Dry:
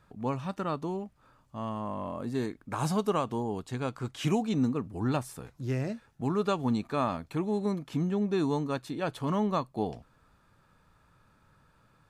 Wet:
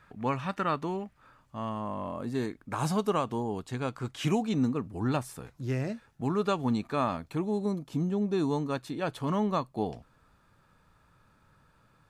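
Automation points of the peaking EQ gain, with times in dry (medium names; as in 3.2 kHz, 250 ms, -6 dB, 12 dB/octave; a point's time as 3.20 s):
peaking EQ 1.9 kHz 1.5 oct
0.99 s +10 dB
1.86 s +1.5 dB
7.19 s +1.5 dB
7.82 s -9.5 dB
8.71 s +0.5 dB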